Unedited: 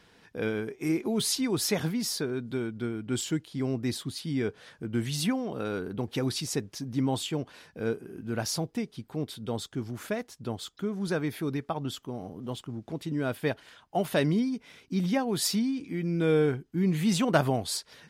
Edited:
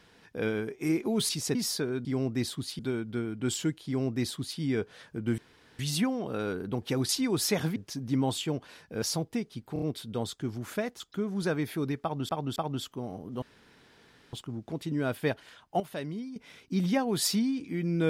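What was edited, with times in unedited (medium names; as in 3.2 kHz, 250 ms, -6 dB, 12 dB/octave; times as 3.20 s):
1.29–1.96 s: swap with 6.35–6.61 s
3.53–4.27 s: copy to 2.46 s
5.05 s: insert room tone 0.41 s
7.87–8.44 s: delete
9.15 s: stutter 0.03 s, 4 plays
10.33–10.65 s: delete
11.67–11.94 s: loop, 3 plays
12.53 s: insert room tone 0.91 s
14.00–14.56 s: gain -11 dB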